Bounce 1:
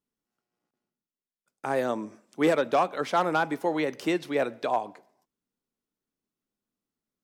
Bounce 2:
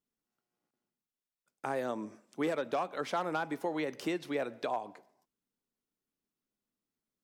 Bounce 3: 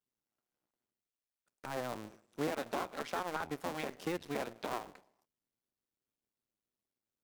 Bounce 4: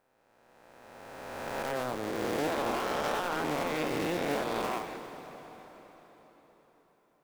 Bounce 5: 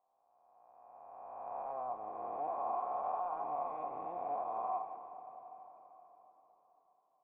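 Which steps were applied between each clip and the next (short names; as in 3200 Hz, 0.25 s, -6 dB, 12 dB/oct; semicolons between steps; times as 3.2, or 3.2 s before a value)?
compressor 2.5:1, threshold -29 dBFS, peak gain reduction 8 dB; gain -3 dB
cycle switcher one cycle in 2, muted; gain -1.5 dB
spectral swells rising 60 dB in 2.38 s; hard clip -30.5 dBFS, distortion -11 dB; plate-style reverb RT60 4.8 s, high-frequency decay 0.85×, DRR 7.5 dB; gain +4 dB
vocal tract filter a; gain +4 dB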